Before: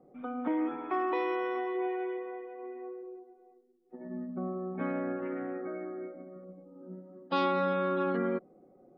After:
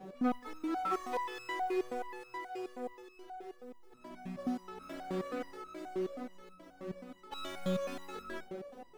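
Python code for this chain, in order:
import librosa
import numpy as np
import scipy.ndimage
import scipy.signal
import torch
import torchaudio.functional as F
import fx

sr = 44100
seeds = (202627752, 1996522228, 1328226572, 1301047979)

y = fx.bass_treble(x, sr, bass_db=1, treble_db=-3)
y = fx.hum_notches(y, sr, base_hz=60, count=8)
y = fx.echo_banded(y, sr, ms=75, feedback_pct=67, hz=600.0, wet_db=-16.0)
y = fx.power_curve(y, sr, exponent=0.5)
y = fx.resonator_held(y, sr, hz=9.4, low_hz=190.0, high_hz=1300.0)
y = y * librosa.db_to_amplitude(4.0)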